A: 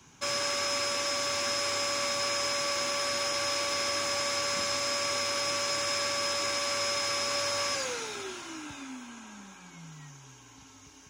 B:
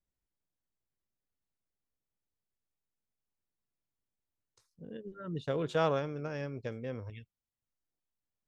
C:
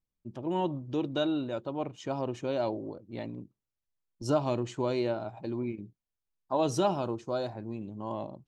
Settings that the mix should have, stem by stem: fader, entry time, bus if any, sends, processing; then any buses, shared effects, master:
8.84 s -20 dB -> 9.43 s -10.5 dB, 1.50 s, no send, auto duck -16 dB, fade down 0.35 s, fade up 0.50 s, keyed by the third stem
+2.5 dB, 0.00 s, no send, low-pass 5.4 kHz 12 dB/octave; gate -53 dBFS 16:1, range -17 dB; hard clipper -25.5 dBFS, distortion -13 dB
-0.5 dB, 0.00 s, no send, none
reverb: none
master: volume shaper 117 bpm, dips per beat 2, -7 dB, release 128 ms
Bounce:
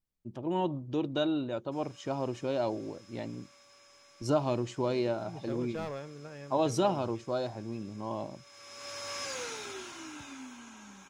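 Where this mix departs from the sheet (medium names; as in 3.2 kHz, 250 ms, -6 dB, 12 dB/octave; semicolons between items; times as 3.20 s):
stem A -20.0 dB -> -13.0 dB; stem B +2.5 dB -> -7.5 dB; master: missing volume shaper 117 bpm, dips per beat 2, -7 dB, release 128 ms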